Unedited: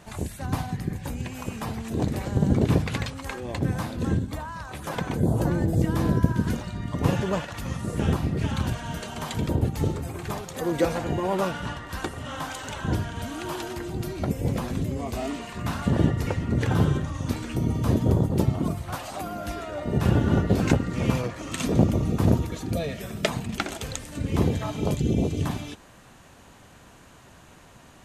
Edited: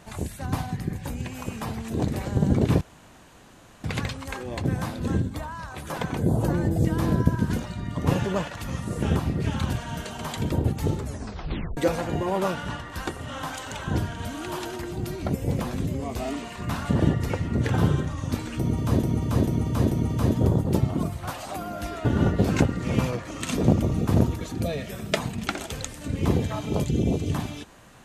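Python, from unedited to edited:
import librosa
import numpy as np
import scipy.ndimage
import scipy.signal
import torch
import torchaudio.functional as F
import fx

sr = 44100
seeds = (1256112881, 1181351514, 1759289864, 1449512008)

y = fx.edit(x, sr, fx.insert_room_tone(at_s=2.81, length_s=1.03),
    fx.tape_stop(start_s=9.95, length_s=0.79),
    fx.repeat(start_s=17.56, length_s=0.44, count=4),
    fx.cut(start_s=19.7, length_s=0.46), tone=tone)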